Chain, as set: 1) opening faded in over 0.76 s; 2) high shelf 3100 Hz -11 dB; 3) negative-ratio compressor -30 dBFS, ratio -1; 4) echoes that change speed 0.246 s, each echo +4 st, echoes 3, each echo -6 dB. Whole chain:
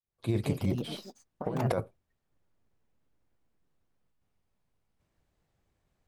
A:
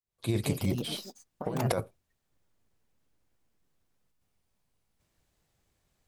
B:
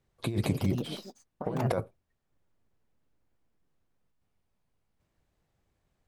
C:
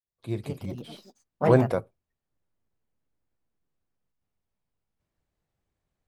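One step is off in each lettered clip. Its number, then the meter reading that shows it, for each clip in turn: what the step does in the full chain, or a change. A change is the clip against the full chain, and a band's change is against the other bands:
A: 2, 8 kHz band +9.5 dB; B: 1, 8 kHz band +2.5 dB; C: 3, crest factor change +3.5 dB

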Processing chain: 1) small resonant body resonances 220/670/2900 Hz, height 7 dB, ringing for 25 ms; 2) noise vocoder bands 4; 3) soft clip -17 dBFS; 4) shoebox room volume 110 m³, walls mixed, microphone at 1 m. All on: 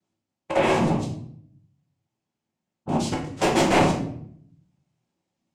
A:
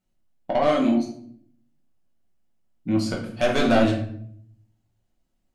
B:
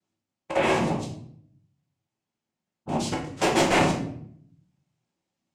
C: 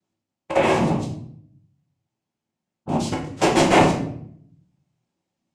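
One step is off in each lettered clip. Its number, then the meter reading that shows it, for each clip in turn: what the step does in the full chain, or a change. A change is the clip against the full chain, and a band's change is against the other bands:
2, 8 kHz band -7.0 dB; 1, 125 Hz band -2.5 dB; 3, distortion -12 dB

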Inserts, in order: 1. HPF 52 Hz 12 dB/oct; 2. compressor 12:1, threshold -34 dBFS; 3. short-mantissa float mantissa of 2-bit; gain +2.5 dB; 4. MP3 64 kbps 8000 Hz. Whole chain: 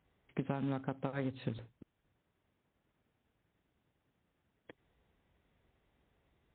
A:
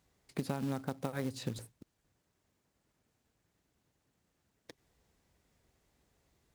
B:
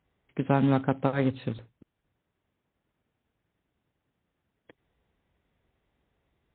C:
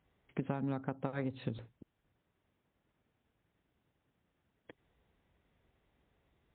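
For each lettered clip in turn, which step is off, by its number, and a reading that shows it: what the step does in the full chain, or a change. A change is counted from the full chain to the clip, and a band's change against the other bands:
4, 4 kHz band +6.5 dB; 2, mean gain reduction 9.5 dB; 3, distortion -20 dB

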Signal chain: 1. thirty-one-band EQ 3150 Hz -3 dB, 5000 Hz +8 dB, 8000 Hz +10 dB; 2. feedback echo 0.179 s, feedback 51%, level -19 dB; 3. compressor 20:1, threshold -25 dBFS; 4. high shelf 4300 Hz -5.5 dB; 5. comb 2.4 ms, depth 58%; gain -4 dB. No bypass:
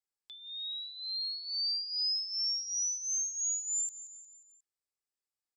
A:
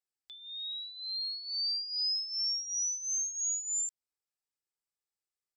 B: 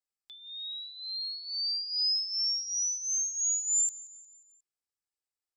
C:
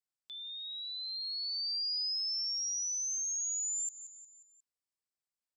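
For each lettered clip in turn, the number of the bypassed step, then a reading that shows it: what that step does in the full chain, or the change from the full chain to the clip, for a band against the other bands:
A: 2, momentary loudness spread change -7 LU; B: 3, mean gain reduction 2.0 dB; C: 5, loudness change -1.5 LU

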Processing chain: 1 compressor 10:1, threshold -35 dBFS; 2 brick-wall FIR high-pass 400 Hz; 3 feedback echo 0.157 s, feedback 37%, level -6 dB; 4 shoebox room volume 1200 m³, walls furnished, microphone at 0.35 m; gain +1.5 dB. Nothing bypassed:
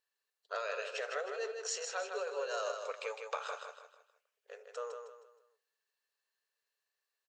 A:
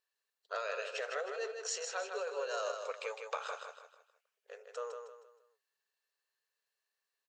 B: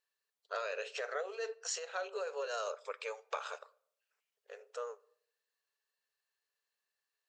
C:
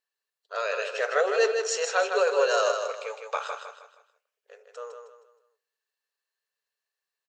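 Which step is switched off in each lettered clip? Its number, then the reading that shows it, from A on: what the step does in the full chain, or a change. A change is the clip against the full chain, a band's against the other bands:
4, momentary loudness spread change +2 LU; 3, echo-to-direct -5.0 dB to -17.0 dB; 1, mean gain reduction 9.0 dB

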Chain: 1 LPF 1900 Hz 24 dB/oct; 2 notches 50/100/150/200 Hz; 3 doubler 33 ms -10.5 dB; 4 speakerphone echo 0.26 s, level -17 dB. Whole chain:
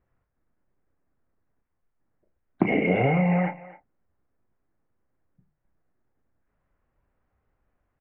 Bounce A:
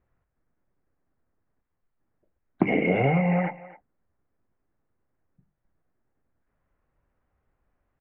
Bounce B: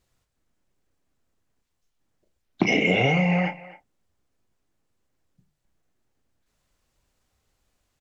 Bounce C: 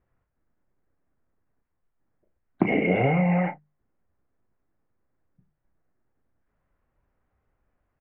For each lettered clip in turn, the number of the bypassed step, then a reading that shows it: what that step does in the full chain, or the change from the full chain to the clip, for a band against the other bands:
3, momentary loudness spread change -2 LU; 1, 2 kHz band +6.0 dB; 4, momentary loudness spread change -2 LU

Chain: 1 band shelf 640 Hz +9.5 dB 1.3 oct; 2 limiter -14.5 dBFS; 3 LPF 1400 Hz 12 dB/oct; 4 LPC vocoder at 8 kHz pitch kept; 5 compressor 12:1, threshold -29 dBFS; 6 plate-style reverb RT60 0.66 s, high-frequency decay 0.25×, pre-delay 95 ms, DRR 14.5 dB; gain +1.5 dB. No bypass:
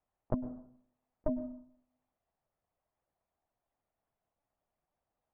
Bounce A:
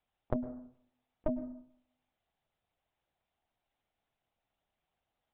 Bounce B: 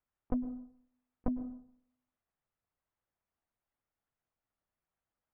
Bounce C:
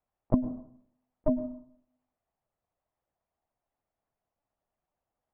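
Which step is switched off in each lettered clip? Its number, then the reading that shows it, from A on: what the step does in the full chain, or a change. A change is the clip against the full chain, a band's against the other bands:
3, 125 Hz band -2.0 dB; 1, 500 Hz band -8.0 dB; 5, mean gain reduction 5.0 dB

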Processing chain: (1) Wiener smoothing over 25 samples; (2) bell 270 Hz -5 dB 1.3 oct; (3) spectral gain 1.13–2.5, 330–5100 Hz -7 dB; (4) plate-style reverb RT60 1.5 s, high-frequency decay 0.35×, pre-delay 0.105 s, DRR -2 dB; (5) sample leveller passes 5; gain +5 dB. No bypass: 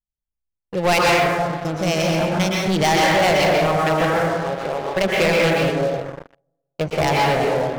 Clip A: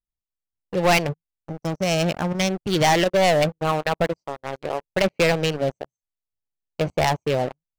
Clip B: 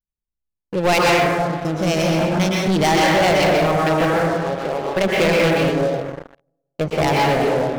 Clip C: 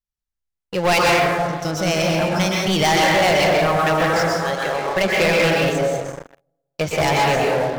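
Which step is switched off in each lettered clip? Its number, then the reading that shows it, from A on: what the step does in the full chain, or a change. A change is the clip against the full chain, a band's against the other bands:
4, momentary loudness spread change +5 LU; 2, 250 Hz band +2.5 dB; 1, 8 kHz band +2.0 dB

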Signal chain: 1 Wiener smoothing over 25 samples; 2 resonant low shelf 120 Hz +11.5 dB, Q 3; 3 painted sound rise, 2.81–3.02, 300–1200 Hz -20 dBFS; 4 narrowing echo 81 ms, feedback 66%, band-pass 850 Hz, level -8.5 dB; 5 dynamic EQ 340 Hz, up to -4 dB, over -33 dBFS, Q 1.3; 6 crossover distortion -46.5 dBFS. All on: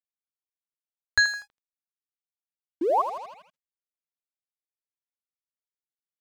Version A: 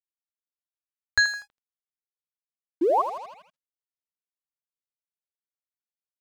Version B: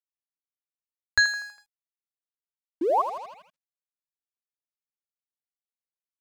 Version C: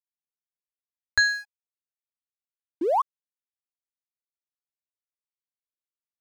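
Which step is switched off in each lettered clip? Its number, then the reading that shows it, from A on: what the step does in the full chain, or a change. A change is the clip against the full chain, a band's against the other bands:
5, momentary loudness spread change -3 LU; 1, momentary loudness spread change +3 LU; 4, momentary loudness spread change -5 LU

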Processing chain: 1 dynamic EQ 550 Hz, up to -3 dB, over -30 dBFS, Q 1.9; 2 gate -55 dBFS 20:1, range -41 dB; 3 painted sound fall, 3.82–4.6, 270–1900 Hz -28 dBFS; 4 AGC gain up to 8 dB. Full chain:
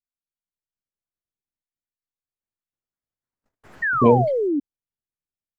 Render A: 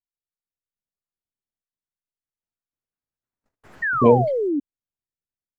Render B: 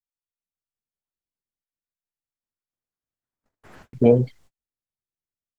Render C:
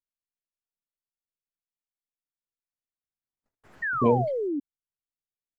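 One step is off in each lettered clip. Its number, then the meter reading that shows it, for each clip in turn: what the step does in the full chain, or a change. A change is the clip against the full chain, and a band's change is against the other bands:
1, momentary loudness spread change +1 LU; 3, 2 kHz band -21.0 dB; 4, loudness change -6.5 LU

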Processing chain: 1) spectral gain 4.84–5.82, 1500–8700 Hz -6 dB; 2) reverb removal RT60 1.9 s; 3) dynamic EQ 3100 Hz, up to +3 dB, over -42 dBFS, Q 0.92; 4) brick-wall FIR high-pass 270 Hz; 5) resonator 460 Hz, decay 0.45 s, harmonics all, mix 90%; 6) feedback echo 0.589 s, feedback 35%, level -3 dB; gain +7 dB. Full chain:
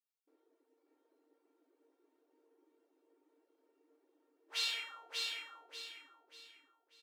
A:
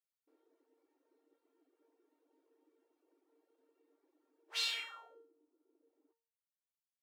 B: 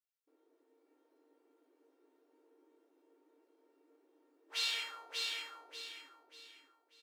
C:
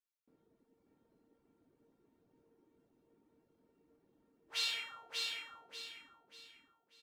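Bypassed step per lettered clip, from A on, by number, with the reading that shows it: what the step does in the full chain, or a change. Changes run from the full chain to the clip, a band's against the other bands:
6, momentary loudness spread change -6 LU; 2, loudness change +1.0 LU; 4, 250 Hz band +3.0 dB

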